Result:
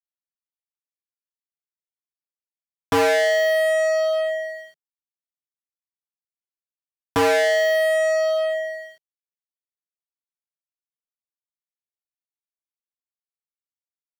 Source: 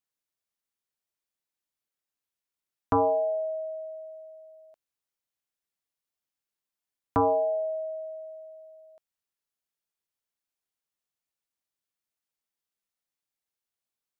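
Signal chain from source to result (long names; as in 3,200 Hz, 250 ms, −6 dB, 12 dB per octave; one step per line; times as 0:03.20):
fuzz pedal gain 45 dB, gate −52 dBFS
graphic EQ with 15 bands 160 Hz +9 dB, 400 Hz +9 dB, 1,600 Hz +8 dB
level −7.5 dB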